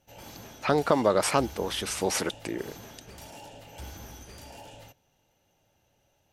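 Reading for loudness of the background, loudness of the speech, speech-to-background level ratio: -45.5 LUFS, -27.5 LUFS, 18.0 dB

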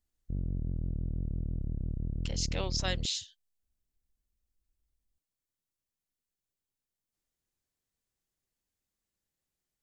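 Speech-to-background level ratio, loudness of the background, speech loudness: 2.5 dB, -37.0 LUFS, -34.5 LUFS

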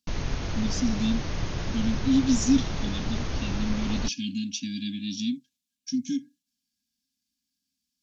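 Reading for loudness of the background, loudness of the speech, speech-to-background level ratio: -33.0 LUFS, -29.0 LUFS, 4.0 dB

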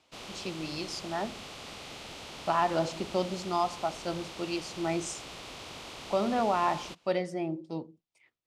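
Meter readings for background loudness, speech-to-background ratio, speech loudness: -43.0 LUFS, 10.5 dB, -32.5 LUFS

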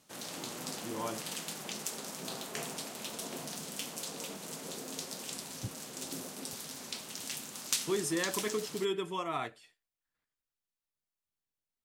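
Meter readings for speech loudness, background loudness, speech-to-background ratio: -36.5 LUFS, -39.5 LUFS, 3.0 dB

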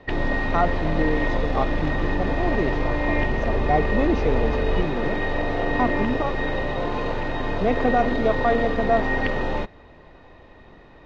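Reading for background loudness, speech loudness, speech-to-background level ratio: -25.5 LUFS, -26.5 LUFS, -1.0 dB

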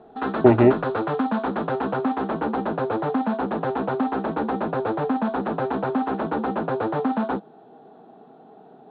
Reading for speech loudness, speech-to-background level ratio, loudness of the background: -18.0 LUFS, 7.5 dB, -25.5 LUFS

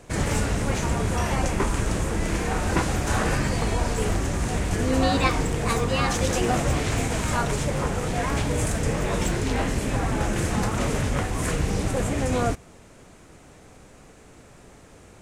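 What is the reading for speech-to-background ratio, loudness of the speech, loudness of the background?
-4.0 dB, -29.5 LUFS, -25.5 LUFS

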